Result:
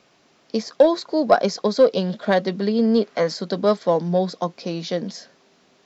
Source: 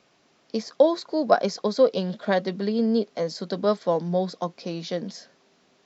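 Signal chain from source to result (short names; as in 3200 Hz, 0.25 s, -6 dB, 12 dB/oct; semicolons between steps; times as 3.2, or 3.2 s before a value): in parallel at -8.5 dB: hard clip -15.5 dBFS, distortion -12 dB; 2.83–3.34 on the sum: bell 1500 Hz +3 dB -> +13 dB 1.6 oct; gain +1.5 dB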